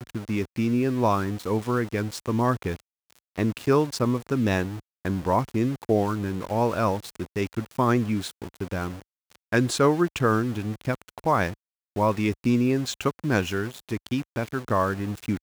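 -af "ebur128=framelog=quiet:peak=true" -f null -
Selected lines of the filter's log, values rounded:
Integrated loudness:
  I:         -25.8 LUFS
  Threshold: -36.1 LUFS
Loudness range:
  LRA:         1.5 LU
  Threshold: -46.0 LUFS
  LRA low:   -26.7 LUFS
  LRA high:  -25.2 LUFS
True peak:
  Peak:       -7.5 dBFS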